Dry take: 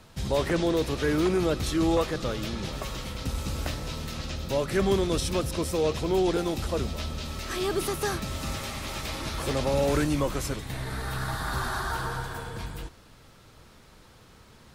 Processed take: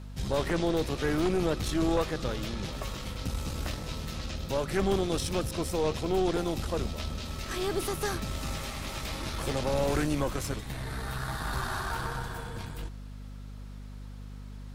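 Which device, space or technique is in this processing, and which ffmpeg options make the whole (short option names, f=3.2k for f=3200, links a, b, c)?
valve amplifier with mains hum: -af "aeval=exprs='(tanh(8.91*val(0)+0.6)-tanh(0.6))/8.91':c=same,aeval=exprs='val(0)+0.00891*(sin(2*PI*50*n/s)+sin(2*PI*2*50*n/s)/2+sin(2*PI*3*50*n/s)/3+sin(2*PI*4*50*n/s)/4+sin(2*PI*5*50*n/s)/5)':c=same"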